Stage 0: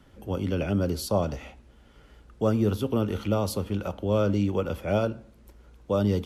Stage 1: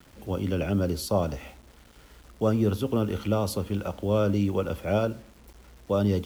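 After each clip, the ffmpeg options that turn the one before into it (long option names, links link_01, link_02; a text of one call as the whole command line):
ffmpeg -i in.wav -af "acrusher=bits=8:mix=0:aa=0.000001" out.wav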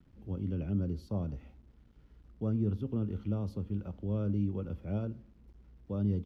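ffmpeg -i in.wav -af "firequalizer=gain_entry='entry(160,0);entry(580,-14);entry(5600,-21);entry(8000,-28)':delay=0.05:min_phase=1,volume=-4.5dB" out.wav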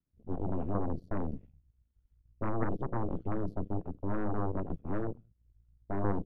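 ffmpeg -i in.wav -filter_complex "[0:a]asplit=2[link_01][link_02];[link_02]adelay=204.1,volume=-20dB,highshelf=frequency=4000:gain=-4.59[link_03];[link_01][link_03]amix=inputs=2:normalize=0,afwtdn=0.0112,aeval=exprs='0.1*(cos(1*acos(clip(val(0)/0.1,-1,1)))-cos(1*PI/2))+0.0355*(cos(3*acos(clip(val(0)/0.1,-1,1)))-cos(3*PI/2))+0.00447*(cos(7*acos(clip(val(0)/0.1,-1,1)))-cos(7*PI/2))+0.0282*(cos(8*acos(clip(val(0)/0.1,-1,1)))-cos(8*PI/2))':channel_layout=same" out.wav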